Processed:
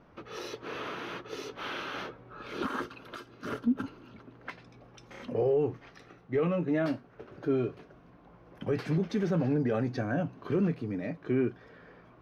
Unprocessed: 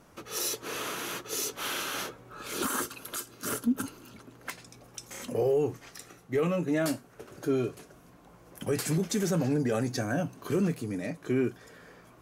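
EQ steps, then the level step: distance through air 280 m; band-stop 7.1 kHz, Q 9; 0.0 dB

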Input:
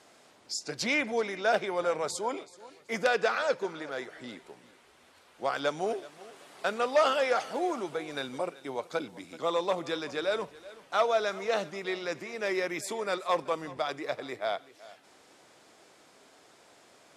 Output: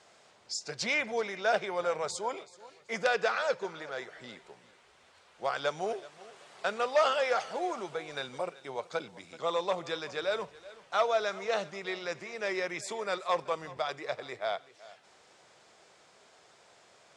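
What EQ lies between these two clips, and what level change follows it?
low-pass 8.6 kHz 24 dB/octave; peaking EQ 280 Hz -10.5 dB 0.56 oct; -1.0 dB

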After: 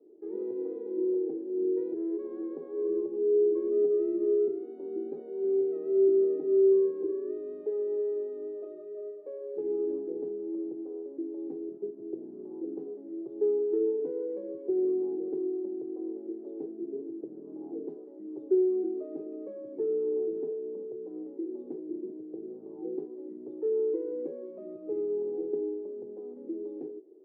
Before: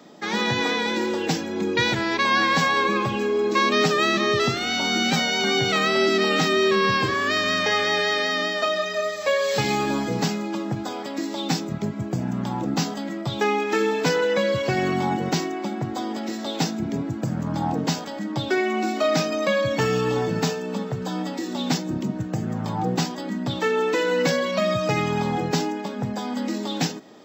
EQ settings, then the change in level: Butterworth band-pass 380 Hz, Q 3.9; 0.0 dB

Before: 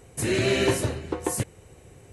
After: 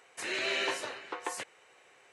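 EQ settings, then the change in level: high-pass 1.3 kHz 12 dB/octave; dynamic bell 1.9 kHz, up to -5 dB, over -40 dBFS, Q 0.7; tape spacing loss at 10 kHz 22 dB; +7.0 dB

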